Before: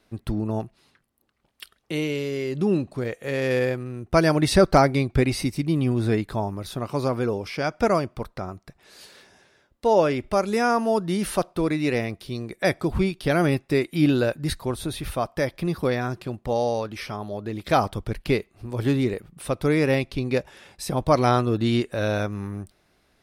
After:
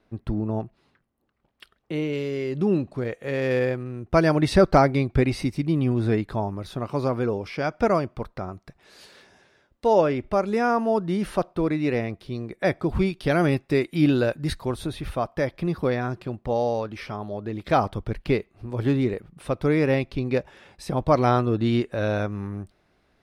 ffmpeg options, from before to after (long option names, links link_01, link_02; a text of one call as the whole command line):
ffmpeg -i in.wav -af "asetnsamples=nb_out_samples=441:pad=0,asendcmd='2.13 lowpass f 3000;8.53 lowpass f 4900;10.01 lowpass f 2000;12.89 lowpass f 4900;14.87 lowpass f 2600',lowpass=frequency=1500:poles=1" out.wav